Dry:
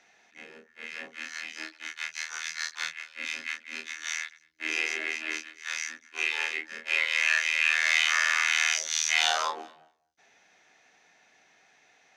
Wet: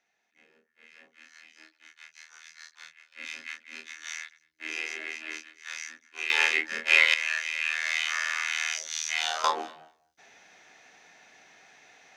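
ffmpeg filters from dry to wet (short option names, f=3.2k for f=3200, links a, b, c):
-af "asetnsamples=n=441:p=0,asendcmd='3.12 volume volume -5dB;6.3 volume volume 7dB;7.14 volume volume -5dB;9.44 volume volume 6dB',volume=-15dB"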